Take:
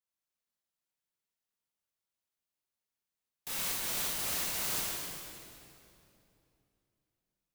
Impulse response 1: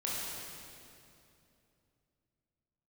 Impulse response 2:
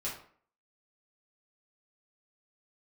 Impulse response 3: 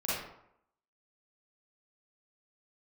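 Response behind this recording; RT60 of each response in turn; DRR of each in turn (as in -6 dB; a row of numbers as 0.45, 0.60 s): 1; 2.8, 0.50, 0.75 s; -6.5, -7.0, -9.5 dB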